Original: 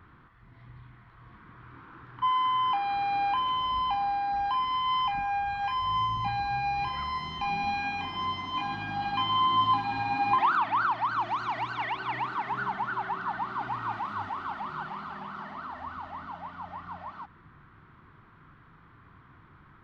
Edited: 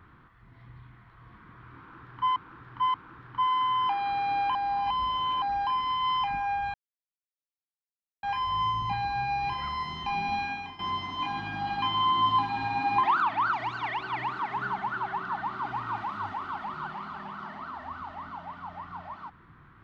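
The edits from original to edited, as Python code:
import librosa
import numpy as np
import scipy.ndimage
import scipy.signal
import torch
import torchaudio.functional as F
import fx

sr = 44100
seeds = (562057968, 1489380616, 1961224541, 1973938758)

y = fx.edit(x, sr, fx.repeat(start_s=1.78, length_s=0.58, count=3),
    fx.reverse_span(start_s=3.39, length_s=0.87),
    fx.insert_silence(at_s=5.58, length_s=1.49),
    fx.fade_out_to(start_s=7.76, length_s=0.38, floor_db=-12.5),
    fx.cut(start_s=10.88, length_s=0.61), tone=tone)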